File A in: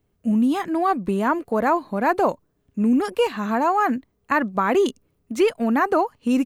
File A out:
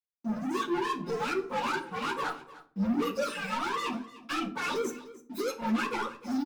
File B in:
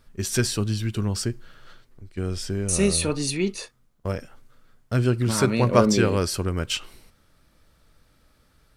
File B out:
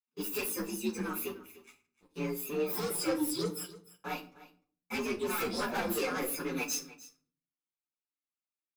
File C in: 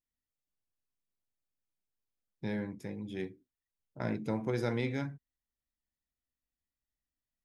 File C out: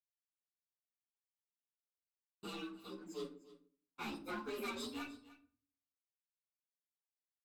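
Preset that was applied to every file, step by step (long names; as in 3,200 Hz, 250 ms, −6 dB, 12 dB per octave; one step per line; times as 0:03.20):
partials spread apart or drawn together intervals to 129%
noise gate −52 dBFS, range −20 dB
high-pass filter 260 Hz 24 dB per octave
reverb reduction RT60 0.79 s
parametric band 1,800 Hz +3 dB 1.7 octaves
comb filter 0.8 ms, depth 89%
dynamic equaliser 530 Hz, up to +7 dB, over −42 dBFS, Q 2.3
brickwall limiter −16 dBFS
leveller curve on the samples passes 3
multi-voice chorus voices 4, 1.2 Hz, delay 10 ms, depth 3.3 ms
single-tap delay 301 ms −18 dB
rectangular room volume 500 cubic metres, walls furnished, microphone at 0.9 metres
level −9 dB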